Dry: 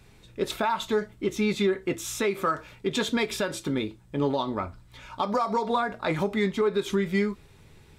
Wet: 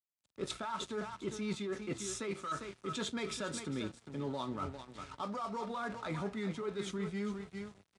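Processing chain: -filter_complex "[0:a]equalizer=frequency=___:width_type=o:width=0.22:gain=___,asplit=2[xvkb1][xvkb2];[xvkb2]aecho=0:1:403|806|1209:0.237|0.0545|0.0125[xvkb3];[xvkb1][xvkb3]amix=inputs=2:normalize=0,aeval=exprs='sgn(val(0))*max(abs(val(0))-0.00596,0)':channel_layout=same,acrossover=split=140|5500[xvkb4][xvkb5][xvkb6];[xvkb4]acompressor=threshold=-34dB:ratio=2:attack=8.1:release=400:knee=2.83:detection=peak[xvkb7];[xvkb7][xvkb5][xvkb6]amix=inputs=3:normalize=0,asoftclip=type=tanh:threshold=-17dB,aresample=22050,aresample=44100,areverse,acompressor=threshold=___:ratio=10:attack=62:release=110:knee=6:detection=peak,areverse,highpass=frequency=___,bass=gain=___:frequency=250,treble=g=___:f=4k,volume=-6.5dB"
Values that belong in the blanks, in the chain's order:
1.3k, 8.5, -34dB, 56, 5, 4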